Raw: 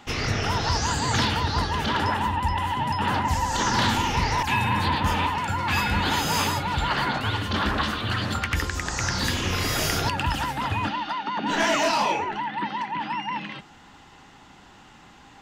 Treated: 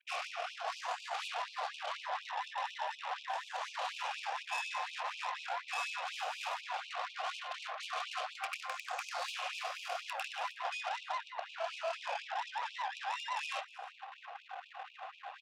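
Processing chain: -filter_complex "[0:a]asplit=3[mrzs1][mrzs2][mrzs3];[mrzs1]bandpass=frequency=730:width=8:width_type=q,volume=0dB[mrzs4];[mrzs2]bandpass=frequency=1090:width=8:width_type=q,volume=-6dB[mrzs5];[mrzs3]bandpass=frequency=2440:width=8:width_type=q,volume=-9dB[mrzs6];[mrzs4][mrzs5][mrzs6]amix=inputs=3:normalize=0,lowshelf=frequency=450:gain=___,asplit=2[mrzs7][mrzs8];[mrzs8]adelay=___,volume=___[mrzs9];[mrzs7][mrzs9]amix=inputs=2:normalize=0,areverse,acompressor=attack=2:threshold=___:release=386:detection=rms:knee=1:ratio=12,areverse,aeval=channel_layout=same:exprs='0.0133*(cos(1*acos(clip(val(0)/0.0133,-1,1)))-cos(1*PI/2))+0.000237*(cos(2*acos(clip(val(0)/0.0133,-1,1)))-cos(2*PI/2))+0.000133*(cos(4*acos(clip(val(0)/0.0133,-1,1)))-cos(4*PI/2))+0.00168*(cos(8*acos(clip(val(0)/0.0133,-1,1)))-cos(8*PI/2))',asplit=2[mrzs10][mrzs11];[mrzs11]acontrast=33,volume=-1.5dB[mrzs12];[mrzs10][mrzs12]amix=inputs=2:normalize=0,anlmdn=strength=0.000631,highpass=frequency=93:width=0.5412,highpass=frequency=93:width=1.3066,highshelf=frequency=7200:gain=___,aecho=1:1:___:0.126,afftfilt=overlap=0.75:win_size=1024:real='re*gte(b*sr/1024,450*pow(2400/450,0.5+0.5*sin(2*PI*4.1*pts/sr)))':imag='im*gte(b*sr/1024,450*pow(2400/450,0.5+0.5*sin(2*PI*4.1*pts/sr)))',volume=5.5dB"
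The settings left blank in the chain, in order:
6, 27, -10dB, -45dB, 4, 316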